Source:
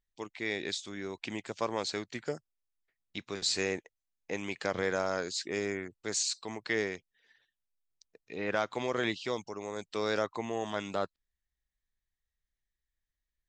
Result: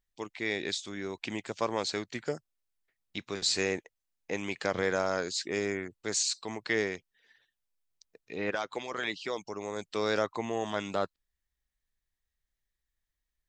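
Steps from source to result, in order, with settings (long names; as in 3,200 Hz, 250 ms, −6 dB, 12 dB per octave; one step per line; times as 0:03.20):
0:08.50–0:09.48: harmonic and percussive parts rebalanced harmonic −14 dB
level +2 dB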